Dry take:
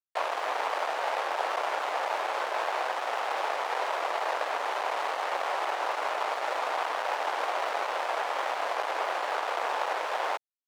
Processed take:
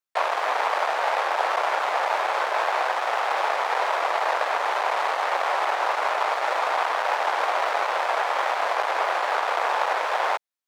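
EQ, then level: HPF 600 Hz 6 dB/oct; bell 2900 Hz -2.5 dB 0.23 oct; high shelf 3900 Hz -5.5 dB; +8.5 dB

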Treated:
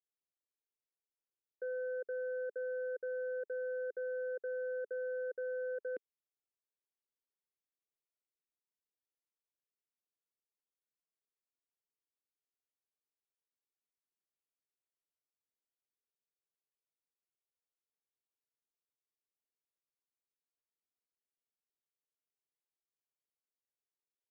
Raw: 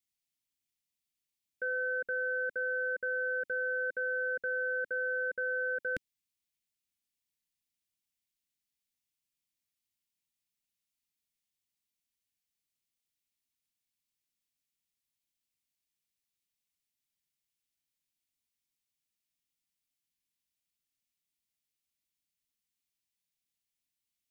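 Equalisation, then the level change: ladder band-pass 480 Hz, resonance 60%; +5.0 dB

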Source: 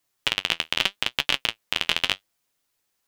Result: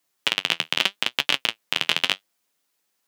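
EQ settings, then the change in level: HPF 150 Hz 24 dB/oct; +1.5 dB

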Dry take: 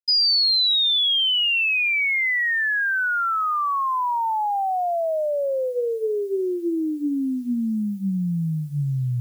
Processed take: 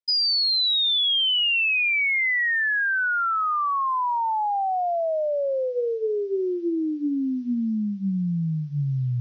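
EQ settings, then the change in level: elliptic low-pass 5800 Hz, stop band 40 dB; air absorption 61 m; 0.0 dB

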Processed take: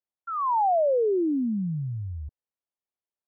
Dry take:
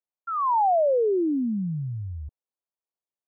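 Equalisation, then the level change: air absorption 400 m; 0.0 dB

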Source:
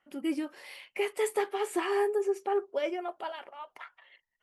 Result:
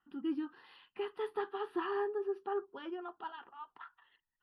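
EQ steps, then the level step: air absorption 400 m; bell 9800 Hz +10 dB 0.23 oct; fixed phaser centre 2200 Hz, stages 6; 0.0 dB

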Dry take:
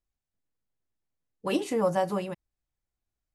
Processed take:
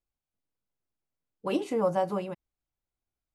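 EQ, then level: low shelf 150 Hz -5 dB; high shelf 3200 Hz -9 dB; notch 1800 Hz, Q 7.8; 0.0 dB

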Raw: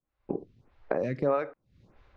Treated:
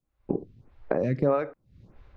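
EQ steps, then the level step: low shelf 330 Hz +8.5 dB; 0.0 dB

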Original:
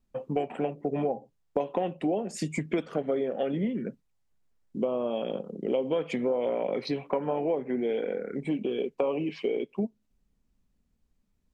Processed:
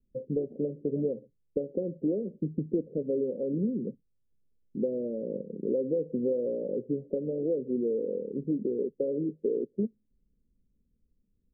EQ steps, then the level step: steep low-pass 540 Hz 72 dB/oct; 0.0 dB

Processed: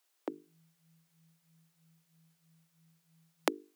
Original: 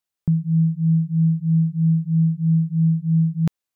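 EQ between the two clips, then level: steep high-pass 290 Hz 72 dB/oct; notches 50/100/150/200/250/300/350/400/450 Hz; +9.5 dB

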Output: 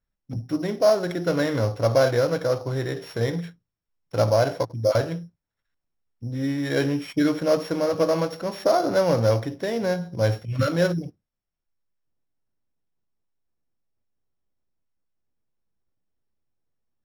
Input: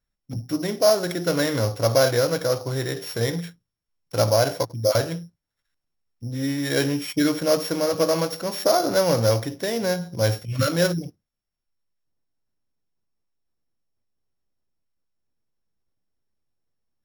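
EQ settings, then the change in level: LPF 2300 Hz 6 dB/oct; 0.0 dB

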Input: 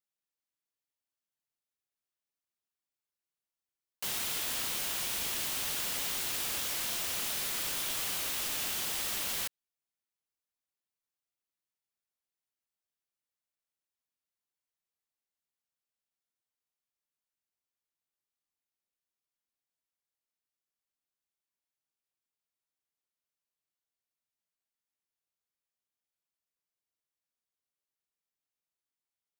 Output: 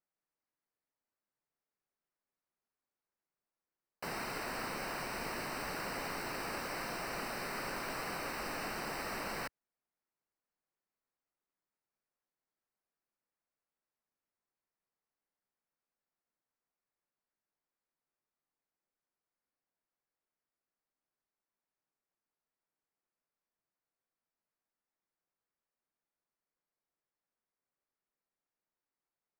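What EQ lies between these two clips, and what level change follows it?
running mean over 13 samples; bell 79 Hz -10 dB 0.98 oct; +6.0 dB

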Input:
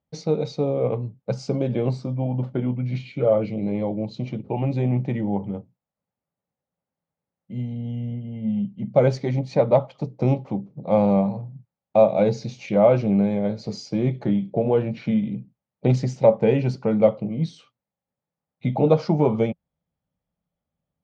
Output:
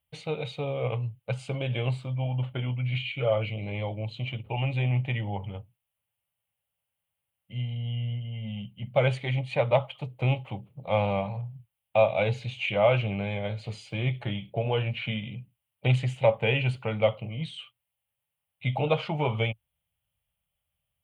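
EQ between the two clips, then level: EQ curve 110 Hz 0 dB, 190 Hz -17 dB, 340 Hz -16 dB, 630 Hz -7 dB, 1800 Hz 0 dB, 3000 Hz +13 dB, 5500 Hz -21 dB, 9300 Hz +10 dB; +2.0 dB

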